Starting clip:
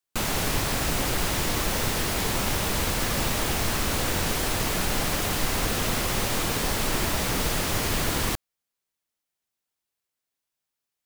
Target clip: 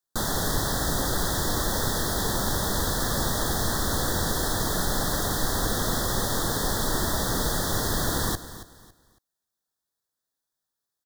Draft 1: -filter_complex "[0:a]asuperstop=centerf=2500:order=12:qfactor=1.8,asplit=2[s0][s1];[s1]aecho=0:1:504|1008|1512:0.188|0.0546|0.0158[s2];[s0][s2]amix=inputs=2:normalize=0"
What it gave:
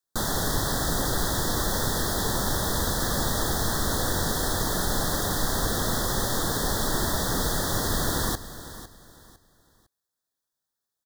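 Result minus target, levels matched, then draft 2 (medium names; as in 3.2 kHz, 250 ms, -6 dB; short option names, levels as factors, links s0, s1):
echo 227 ms late
-filter_complex "[0:a]asuperstop=centerf=2500:order=12:qfactor=1.8,asplit=2[s0][s1];[s1]aecho=0:1:277|554|831:0.188|0.0546|0.0158[s2];[s0][s2]amix=inputs=2:normalize=0"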